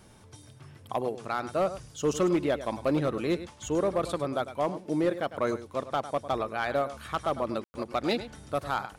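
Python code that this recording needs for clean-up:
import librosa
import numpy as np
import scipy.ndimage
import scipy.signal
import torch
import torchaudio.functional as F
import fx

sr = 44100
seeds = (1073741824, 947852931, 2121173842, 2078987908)

y = fx.fix_declip(x, sr, threshold_db=-19.0)
y = fx.fix_declick_ar(y, sr, threshold=6.5)
y = fx.fix_ambience(y, sr, seeds[0], print_start_s=0.0, print_end_s=0.5, start_s=7.64, end_s=7.74)
y = fx.fix_echo_inverse(y, sr, delay_ms=102, level_db=-13.5)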